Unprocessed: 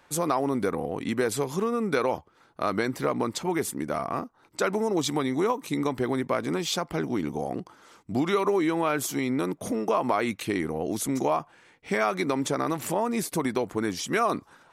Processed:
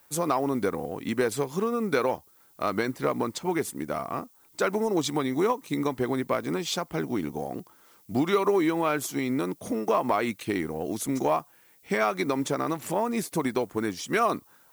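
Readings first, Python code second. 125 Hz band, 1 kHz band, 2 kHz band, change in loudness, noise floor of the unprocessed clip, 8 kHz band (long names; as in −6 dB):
−1.0 dB, 0.0 dB, −0.5 dB, −0.5 dB, −61 dBFS, −2.0 dB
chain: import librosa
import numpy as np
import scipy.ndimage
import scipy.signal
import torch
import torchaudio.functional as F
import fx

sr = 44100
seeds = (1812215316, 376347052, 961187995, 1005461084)

y = 10.0 ** (-12.5 / 20.0) * np.tanh(x / 10.0 ** (-12.5 / 20.0))
y = fx.dmg_noise_colour(y, sr, seeds[0], colour='violet', level_db=-53.0)
y = fx.upward_expand(y, sr, threshold_db=-40.0, expansion=1.5)
y = y * librosa.db_to_amplitude(2.5)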